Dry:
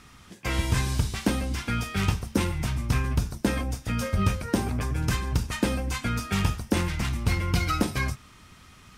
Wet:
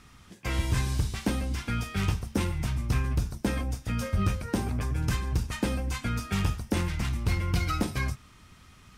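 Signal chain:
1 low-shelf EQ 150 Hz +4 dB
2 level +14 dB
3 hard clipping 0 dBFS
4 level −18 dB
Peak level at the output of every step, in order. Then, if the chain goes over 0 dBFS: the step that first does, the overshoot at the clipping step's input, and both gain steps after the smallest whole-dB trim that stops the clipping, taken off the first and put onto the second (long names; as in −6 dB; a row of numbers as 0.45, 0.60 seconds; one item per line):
−9.0, +5.0, 0.0, −18.0 dBFS
step 2, 5.0 dB
step 2 +9 dB, step 4 −13 dB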